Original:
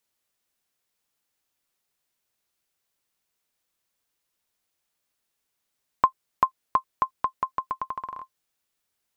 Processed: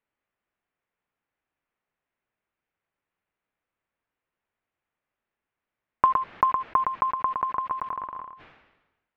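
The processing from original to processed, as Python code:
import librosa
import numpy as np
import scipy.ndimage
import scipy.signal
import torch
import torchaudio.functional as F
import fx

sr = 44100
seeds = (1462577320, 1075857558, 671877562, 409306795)

y = fx.block_float(x, sr, bits=5)
y = scipy.signal.sosfilt(scipy.signal.butter(4, 2400.0, 'lowpass', fs=sr, output='sos'), y)
y = y + 10.0 ** (-8.5 / 20.0) * np.pad(y, (int(114 * sr / 1000.0), 0))[:len(y)]
y = fx.sustainer(y, sr, db_per_s=55.0)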